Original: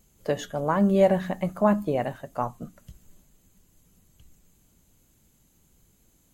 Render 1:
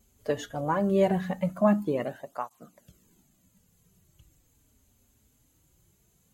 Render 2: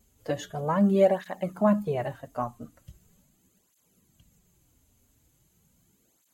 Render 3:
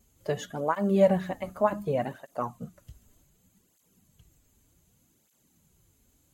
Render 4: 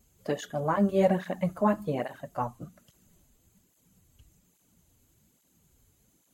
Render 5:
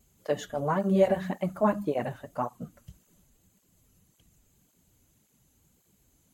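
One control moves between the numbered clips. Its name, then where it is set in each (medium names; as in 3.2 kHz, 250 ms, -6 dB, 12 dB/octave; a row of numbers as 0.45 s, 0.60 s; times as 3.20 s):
cancelling through-zero flanger, nulls at: 0.2 Hz, 0.4 Hz, 0.66 Hz, 1.2 Hz, 1.8 Hz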